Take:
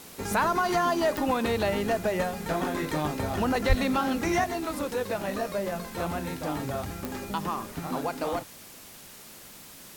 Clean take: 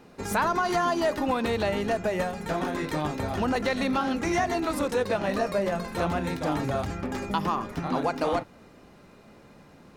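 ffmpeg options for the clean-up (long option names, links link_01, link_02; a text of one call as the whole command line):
ffmpeg -i in.wav -filter_complex "[0:a]adeclick=threshold=4,asplit=3[link_01][link_02][link_03];[link_01]afade=type=out:start_time=3.68:duration=0.02[link_04];[link_02]highpass=frequency=140:width=0.5412,highpass=frequency=140:width=1.3066,afade=type=in:start_time=3.68:duration=0.02,afade=type=out:start_time=3.8:duration=0.02[link_05];[link_03]afade=type=in:start_time=3.8:duration=0.02[link_06];[link_04][link_05][link_06]amix=inputs=3:normalize=0,afwtdn=0.0045,asetnsamples=nb_out_samples=441:pad=0,asendcmd='4.44 volume volume 4dB',volume=0dB" out.wav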